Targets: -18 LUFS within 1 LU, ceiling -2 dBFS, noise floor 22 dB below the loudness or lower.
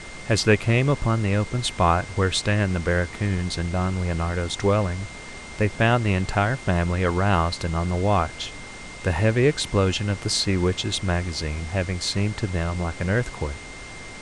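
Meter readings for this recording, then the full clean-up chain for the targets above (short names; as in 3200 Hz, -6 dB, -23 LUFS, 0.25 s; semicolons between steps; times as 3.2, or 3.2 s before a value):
steady tone 2100 Hz; tone level -41 dBFS; noise floor -39 dBFS; noise floor target -46 dBFS; loudness -23.5 LUFS; peak -4.5 dBFS; loudness target -18.0 LUFS
-> notch 2100 Hz, Q 30; noise print and reduce 7 dB; gain +5.5 dB; limiter -2 dBFS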